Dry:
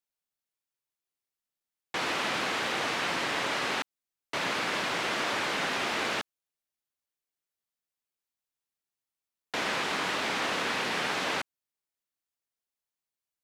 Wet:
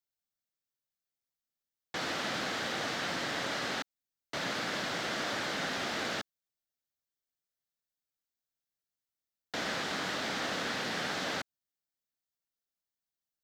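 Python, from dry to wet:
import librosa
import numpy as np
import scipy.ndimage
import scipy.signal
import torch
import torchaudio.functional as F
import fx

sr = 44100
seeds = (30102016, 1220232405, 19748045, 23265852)

y = fx.graphic_eq_15(x, sr, hz=(400, 1000, 2500, 10000), db=(-5, -8, -8, -8))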